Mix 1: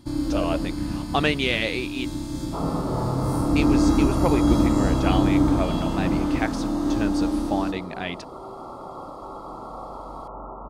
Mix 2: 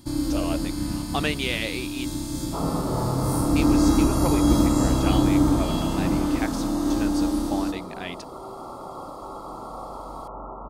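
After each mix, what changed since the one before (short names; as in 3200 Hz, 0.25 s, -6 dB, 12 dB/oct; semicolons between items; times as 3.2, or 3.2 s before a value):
speech -5.0 dB; master: add high shelf 6100 Hz +11.5 dB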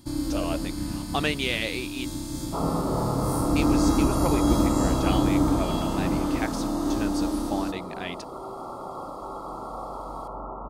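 first sound: send -7.5 dB; second sound: send on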